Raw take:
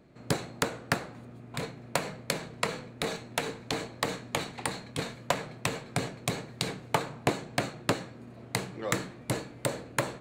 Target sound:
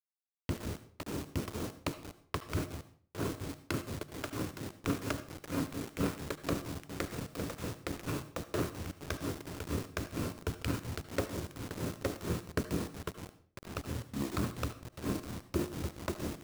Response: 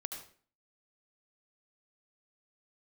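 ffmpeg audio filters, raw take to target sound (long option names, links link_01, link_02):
-filter_complex "[0:a]agate=range=-31dB:threshold=-40dB:ratio=16:detection=peak,equalizer=frequency=1300:width_type=o:width=0.34:gain=-14.5,aecho=1:1:537:0.299,asplit=2[link_01][link_02];[link_02]acompressor=threshold=-46dB:ratio=5,volume=1.5dB[link_03];[link_01][link_03]amix=inputs=2:normalize=0,alimiter=limit=-22.5dB:level=0:latency=1:release=37,adynamicsmooth=sensitivity=6:basefreq=590,asetrate=27386,aresample=44100,tremolo=f=4.3:d=0.92,acrusher=bits=7:mix=0:aa=0.000001,asplit=2[link_04][link_05];[1:a]atrim=start_sample=2205[link_06];[link_05][link_06]afir=irnorm=-1:irlink=0,volume=-4.5dB[link_07];[link_04][link_07]amix=inputs=2:normalize=0,adynamicequalizer=threshold=0.00178:dfrequency=3900:dqfactor=0.7:tfrequency=3900:tqfactor=0.7:attack=5:release=100:ratio=0.375:range=3:mode=boostabove:tftype=highshelf"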